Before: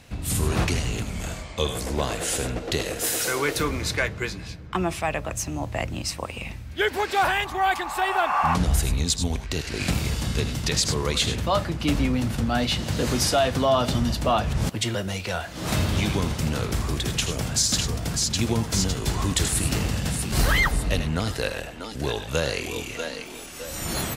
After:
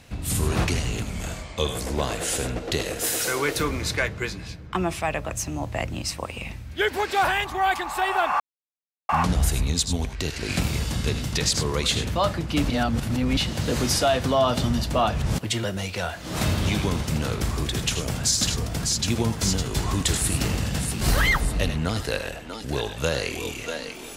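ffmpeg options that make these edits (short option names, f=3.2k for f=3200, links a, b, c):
-filter_complex "[0:a]asplit=4[a][b][c][d];[a]atrim=end=8.4,asetpts=PTS-STARTPTS,afade=t=out:st=8.396:d=0.004:c=hsin,apad=pad_dur=0.69[e];[b]atrim=start=8.4:end=12.012,asetpts=PTS-STARTPTS,afade=t=in:d=0.004:c=hsin[f];[c]atrim=start=12.008:end=12.682,asetpts=PTS-STARTPTS,areverse[g];[d]atrim=start=12.678[h];[e][f]concat=n=2:v=0:a=1[i];[i][g]acrossfade=d=0.004:c1=hsin:c2=hsin[j];[j][h]acrossfade=d=0.004:c1=hsin:c2=hsin"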